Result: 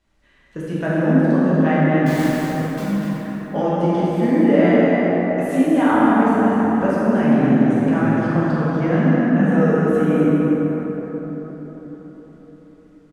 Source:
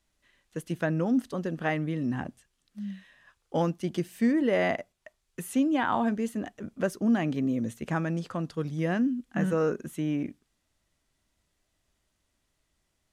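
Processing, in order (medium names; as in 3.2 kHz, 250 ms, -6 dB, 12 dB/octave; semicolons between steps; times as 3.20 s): low-pass 2.1 kHz 6 dB/octave; in parallel at +2 dB: compression, threshold -37 dBFS, peak gain reduction 15.5 dB; 2.06–2.82 s: on the sum: integer overflow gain 32 dB; doubling 45 ms -11 dB; on a send: delay 248 ms -7.5 dB; on the sum: plate-style reverb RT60 4.9 s, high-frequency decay 0.4×, DRR -9.5 dB; trim -1 dB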